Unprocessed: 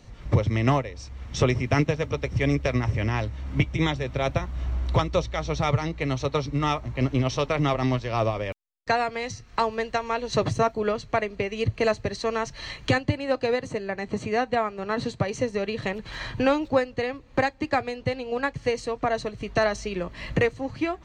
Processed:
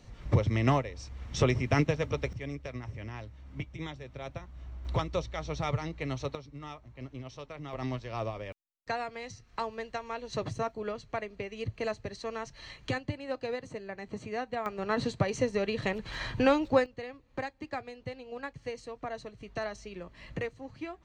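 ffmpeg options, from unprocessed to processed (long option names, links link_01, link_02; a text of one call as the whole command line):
ffmpeg -i in.wav -af "asetnsamples=nb_out_samples=441:pad=0,asendcmd='2.33 volume volume -15.5dB;4.85 volume volume -8dB;6.35 volume volume -19dB;7.73 volume volume -10.5dB;14.66 volume volume -2.5dB;16.86 volume volume -13dB',volume=-4dB" out.wav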